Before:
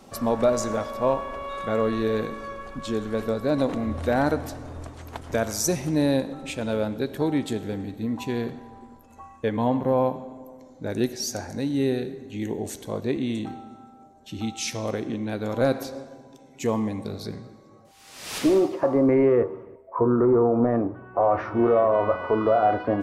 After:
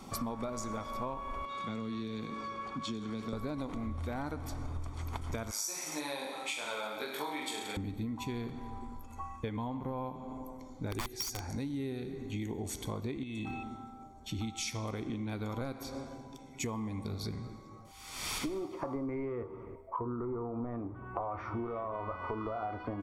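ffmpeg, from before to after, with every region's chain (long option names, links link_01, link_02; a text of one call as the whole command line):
ffmpeg -i in.wav -filter_complex "[0:a]asettb=1/sr,asplit=3[link_01][link_02][link_03];[link_01]atrim=end=1.454[link_04];[link_02]atrim=start=1.45:end=3.33,asetpts=PTS-STARTPTS,afade=type=in:duration=0.004:curve=qsin,afade=type=out:start_time=1.876:duration=0.004:curve=qsin,acrossover=split=240|3000[link_05][link_06][link_07];[link_06]acompressor=threshold=-38dB:ratio=6:attack=3.2:release=140:knee=2.83:detection=peak[link_08];[link_05][link_08][link_07]amix=inputs=3:normalize=0,highpass=170,lowpass=5800[link_09];[link_03]atrim=start=3.326[link_10];[link_04][link_09]acrossfade=duration=0.004:curve1=hsin:curve2=qsin[link_11];[link_11][link_10]acrossfade=duration=0.004:curve1=qsin:curve2=hsin,asettb=1/sr,asplit=3[link_12][link_13][link_14];[link_12]atrim=end=5.514[link_15];[link_13]atrim=start=5.51:end=7.77,asetpts=PTS-STARTPTS,afade=type=in:duration=0.004:curve=qsin,afade=type=out:start_time=2.256:duration=0.004:curve=qsin,highpass=740,aecho=1:1:20|43|69.45|99.87|134.8|175.1|221.3|274.5|335.7:0.794|0.631|0.501|0.398|0.316|0.251|0.2|0.158|0.126,atrim=end_sample=99666[link_16];[link_14]atrim=start=7.766[link_17];[link_15][link_16]acrossfade=duration=0.004:curve1=hsin:curve2=qsin[link_18];[link_18][link_17]acrossfade=duration=0.004:curve1=qsin:curve2=hsin,asettb=1/sr,asplit=3[link_19][link_20][link_21];[link_19]atrim=end=10.914[link_22];[link_20]atrim=start=10.91:end=11.41,asetpts=PTS-STARTPTS,afade=type=in:duration=0.004:curve=qsin,afade=type=out:start_time=0.496:duration=0.004:curve=qsin,highshelf=frequency=12000:gain=9.5,aecho=1:1:2.5:0.54,atrim=end_sample=22050,aeval=exprs='(mod(8.91*val(0)+1,2)-1)/8.91':channel_layout=same[link_23];[link_21]atrim=start=11.406[link_24];[link_22][link_23]acrossfade=duration=0.004:curve1=hsin:curve2=qsin[link_25];[link_25][link_24]acrossfade=duration=0.004:curve1=qsin:curve2=hsin,asettb=1/sr,asplit=3[link_26][link_27][link_28];[link_26]atrim=end=13.234[link_29];[link_27]atrim=start=13.23:end=13.63,asetpts=PTS-STARTPTS,afade=type=in:duration=0.004:curve=qsin,afade=type=out:start_time=0.396:duration=0.004:curve=qsin,acompressor=threshold=-32dB:ratio=6:attack=3.2:release=140:knee=1:detection=peak,aeval=exprs='val(0)+0.00631*sin(2*PI*2600*n/s)':channel_layout=same[link_30];[link_28]atrim=start=13.626[link_31];[link_29][link_30]acrossfade=duration=0.004:curve1=hsin:curve2=qsin[link_32];[link_32][link_31]acrossfade=duration=0.004:curve1=qsin:curve2=hsin,asubboost=boost=3:cutoff=77,aecho=1:1:0.9:0.49,acompressor=threshold=-34dB:ratio=12" out.wav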